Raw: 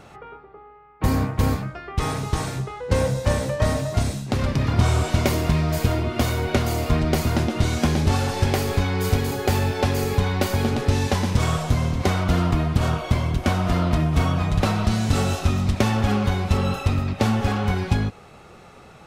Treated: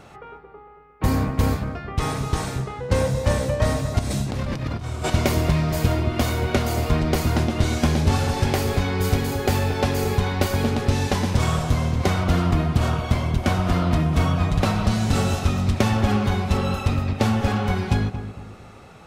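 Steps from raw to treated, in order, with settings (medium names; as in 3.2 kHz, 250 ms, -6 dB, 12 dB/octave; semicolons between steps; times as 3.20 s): 3.99–5.10 s: compressor with a negative ratio -27 dBFS, ratio -1; filtered feedback delay 228 ms, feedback 40%, low-pass 1.4 kHz, level -10 dB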